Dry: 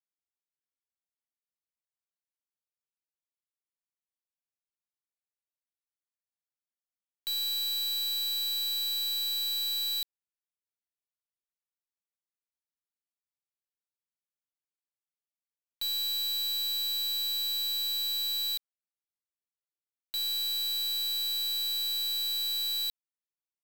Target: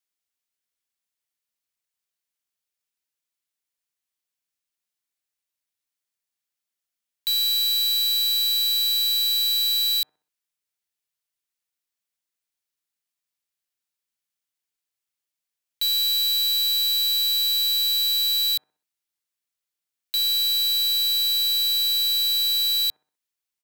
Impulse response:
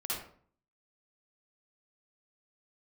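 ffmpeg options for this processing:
-filter_complex "[0:a]acrossover=split=150|1600[s0][s1][s2];[s1]aecho=1:1:63|126|189|252:0.282|0.113|0.0451|0.018[s3];[s2]acontrast=81[s4];[s0][s3][s4]amix=inputs=3:normalize=0,volume=1.33"

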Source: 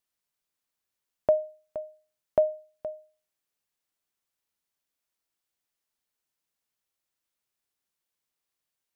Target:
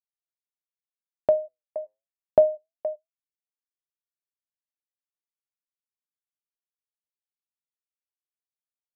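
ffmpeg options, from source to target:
-af "bandreject=f=50:t=h:w=6,bandreject=f=100:t=h:w=6,afftfilt=real='re*gte(hypot(re,im),0.0708)':imag='im*gte(hypot(re,im),0.0708)':win_size=1024:overlap=0.75,agate=range=0.001:threshold=0.00562:ratio=16:detection=peak,flanger=delay=1.3:depth=8.2:regen=80:speed=0.26:shape=triangular,dynaudnorm=f=820:g=5:m=2.24,volume=1.88"

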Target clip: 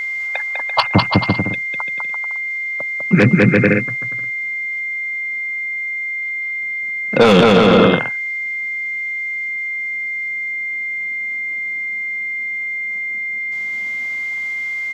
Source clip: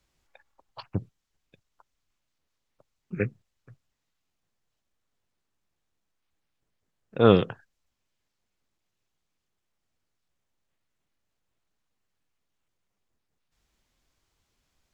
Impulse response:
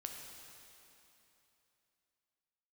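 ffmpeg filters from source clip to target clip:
-filter_complex "[0:a]aecho=1:1:200|340|438|506.6|554.6:0.631|0.398|0.251|0.158|0.1,asplit=2[s0][s1];[s1]highpass=f=720:p=1,volume=22.4,asoftclip=type=tanh:threshold=0.668[s2];[s0][s2]amix=inputs=2:normalize=0,lowpass=f=3800:p=1,volume=0.501,acrossover=split=140|460|1400[s3][s4][s5][s6];[s4]dynaudnorm=f=510:g=9:m=6.31[s7];[s3][s7][s5][s6]amix=inputs=4:normalize=0,equalizer=f=400:t=o:w=0.55:g=-10,aeval=exprs='val(0)+0.0251*sin(2*PI*2100*n/s)':c=same,alimiter=level_in=4.22:limit=0.891:release=50:level=0:latency=1,volume=0.891"

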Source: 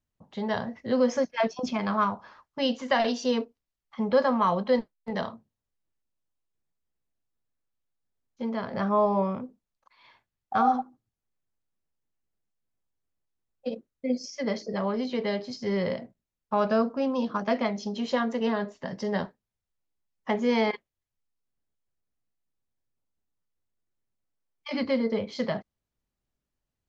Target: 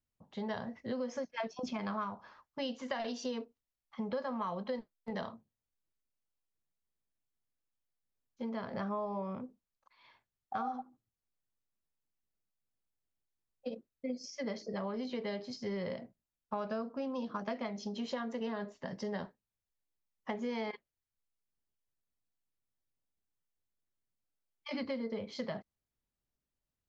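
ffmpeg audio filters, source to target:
-af "acompressor=threshold=0.0398:ratio=6,volume=0.501"

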